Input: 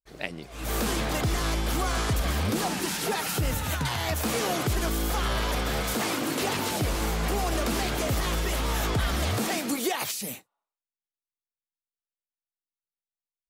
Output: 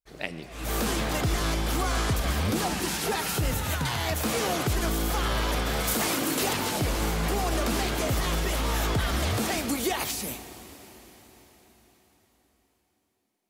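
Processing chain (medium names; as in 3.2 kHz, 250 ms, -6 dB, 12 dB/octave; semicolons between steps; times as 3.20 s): 5.79–6.53 s: treble shelf 7.5 kHz +8 dB; plate-style reverb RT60 5 s, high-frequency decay 0.95×, DRR 11.5 dB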